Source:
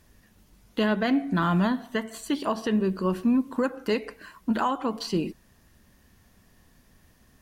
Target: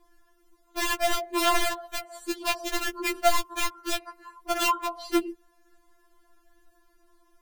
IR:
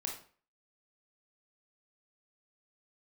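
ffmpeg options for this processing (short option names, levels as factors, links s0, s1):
-af "highshelf=f=1700:t=q:w=1.5:g=-6.5,aeval=exprs='(mod(7.08*val(0)+1,2)-1)/7.08':c=same,afftfilt=real='re*4*eq(mod(b,16),0)':imag='im*4*eq(mod(b,16),0)':win_size=2048:overlap=0.75,volume=1.19"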